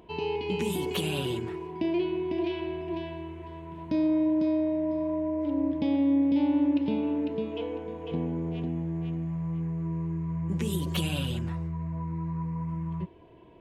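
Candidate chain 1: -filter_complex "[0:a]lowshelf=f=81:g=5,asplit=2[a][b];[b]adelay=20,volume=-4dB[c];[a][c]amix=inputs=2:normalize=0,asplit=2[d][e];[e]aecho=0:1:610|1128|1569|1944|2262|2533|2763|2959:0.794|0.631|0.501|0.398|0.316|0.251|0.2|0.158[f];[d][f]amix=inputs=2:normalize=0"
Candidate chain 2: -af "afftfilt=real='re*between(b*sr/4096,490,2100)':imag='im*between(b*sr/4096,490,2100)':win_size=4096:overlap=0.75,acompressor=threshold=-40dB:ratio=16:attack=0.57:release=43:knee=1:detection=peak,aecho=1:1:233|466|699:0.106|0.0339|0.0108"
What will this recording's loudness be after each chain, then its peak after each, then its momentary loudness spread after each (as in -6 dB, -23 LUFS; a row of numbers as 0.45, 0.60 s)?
-25.0, -46.0 LUFS; -10.5, -35.5 dBFS; 8, 9 LU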